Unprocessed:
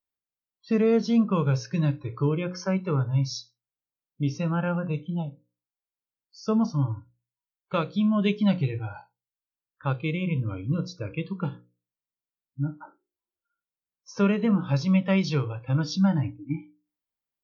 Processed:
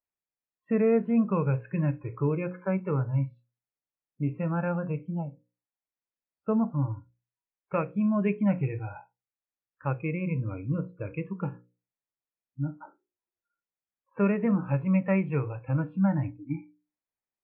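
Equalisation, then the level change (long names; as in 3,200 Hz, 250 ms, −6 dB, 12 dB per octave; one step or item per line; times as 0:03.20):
Chebyshev low-pass with heavy ripple 2,600 Hz, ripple 3 dB
high-frequency loss of the air 91 metres
0.0 dB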